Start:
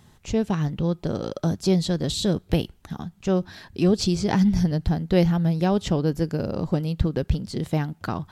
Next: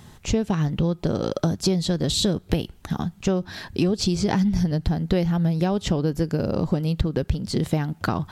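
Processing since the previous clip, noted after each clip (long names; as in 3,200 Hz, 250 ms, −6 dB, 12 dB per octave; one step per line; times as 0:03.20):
downward compressor, threshold −26 dBFS, peak gain reduction 12.5 dB
level +7.5 dB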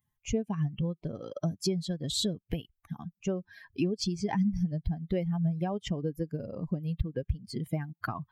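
spectral dynamics exaggerated over time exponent 2
level −4.5 dB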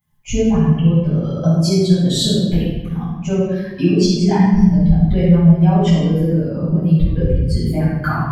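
convolution reverb RT60 1.2 s, pre-delay 5 ms, DRR −12 dB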